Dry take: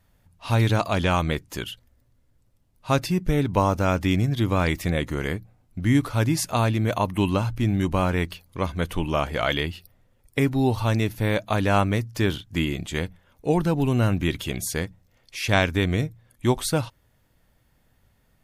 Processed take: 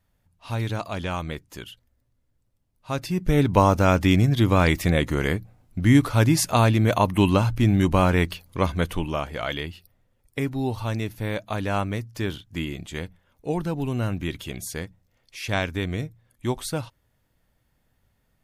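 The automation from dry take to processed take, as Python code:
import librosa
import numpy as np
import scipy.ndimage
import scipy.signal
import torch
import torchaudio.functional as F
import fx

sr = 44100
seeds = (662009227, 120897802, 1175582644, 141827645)

y = fx.gain(x, sr, db=fx.line((2.92, -7.0), (3.4, 3.5), (8.72, 3.5), (9.26, -5.0)))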